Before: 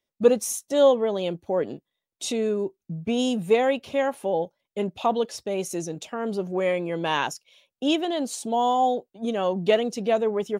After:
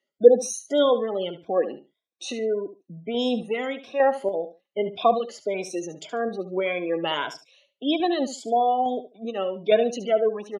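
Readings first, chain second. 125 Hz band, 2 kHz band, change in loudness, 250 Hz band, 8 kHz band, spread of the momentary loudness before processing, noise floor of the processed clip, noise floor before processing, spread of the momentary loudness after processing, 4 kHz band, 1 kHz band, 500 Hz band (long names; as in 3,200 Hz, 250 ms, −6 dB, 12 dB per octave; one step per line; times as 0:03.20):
−7.5 dB, −0.5 dB, +0.5 dB, −2.0 dB, −3.0 dB, 10 LU, −82 dBFS, below −85 dBFS, 11 LU, 0.0 dB, +0.5 dB, +1.0 dB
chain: rippled gain that drifts along the octave scale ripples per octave 1.7, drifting +1.7 Hz, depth 15 dB
high-pass filter 260 Hz 12 dB per octave
notch filter 910 Hz, Q 7.2
gate on every frequency bin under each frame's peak −30 dB strong
low-pass filter 5,300 Hz 12 dB per octave
tape wow and flutter 22 cents
sample-and-hold tremolo 3.5 Hz
repeating echo 72 ms, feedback 17%, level −12.5 dB
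level +1.5 dB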